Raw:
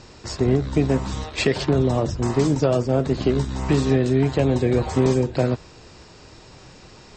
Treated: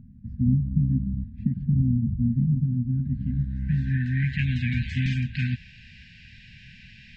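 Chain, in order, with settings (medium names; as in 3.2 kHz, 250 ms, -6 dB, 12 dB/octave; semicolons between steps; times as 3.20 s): low-pass sweep 250 Hz -> 2.7 kHz, 2.66–4.51 s; brick-wall FIR band-stop 250–1500 Hz; trim -1.5 dB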